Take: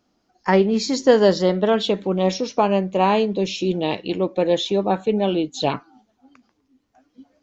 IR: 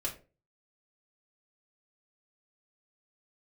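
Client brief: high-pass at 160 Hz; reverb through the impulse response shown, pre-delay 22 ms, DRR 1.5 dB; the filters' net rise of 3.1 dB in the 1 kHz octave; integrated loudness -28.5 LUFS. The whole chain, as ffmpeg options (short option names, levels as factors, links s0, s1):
-filter_complex "[0:a]highpass=160,equalizer=f=1000:t=o:g=4,asplit=2[s0][s1];[1:a]atrim=start_sample=2205,adelay=22[s2];[s1][s2]afir=irnorm=-1:irlink=0,volume=0.631[s3];[s0][s3]amix=inputs=2:normalize=0,volume=0.251"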